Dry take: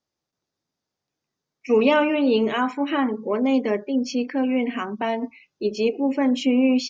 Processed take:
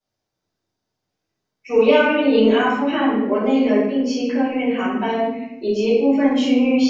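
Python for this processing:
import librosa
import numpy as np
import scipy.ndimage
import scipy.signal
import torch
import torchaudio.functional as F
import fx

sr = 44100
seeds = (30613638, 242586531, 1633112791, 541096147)

y = fx.low_shelf(x, sr, hz=240.0, db=-10.0, at=(1.75, 2.17), fade=0.02)
y = fx.room_shoebox(y, sr, seeds[0], volume_m3=270.0, walls='mixed', distance_m=5.1)
y = F.gain(torch.from_numpy(y), -9.0).numpy()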